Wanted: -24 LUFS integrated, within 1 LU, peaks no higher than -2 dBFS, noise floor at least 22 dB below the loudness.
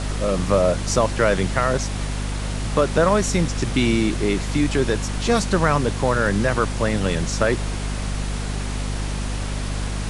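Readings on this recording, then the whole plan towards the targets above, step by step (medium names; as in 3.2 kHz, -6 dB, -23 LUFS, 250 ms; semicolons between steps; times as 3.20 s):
hum 50 Hz; highest harmonic 250 Hz; hum level -23 dBFS; noise floor -26 dBFS; noise floor target -44 dBFS; loudness -22.0 LUFS; peak level -3.5 dBFS; loudness target -24.0 LUFS
-> hum notches 50/100/150/200/250 Hz; noise print and reduce 18 dB; trim -2 dB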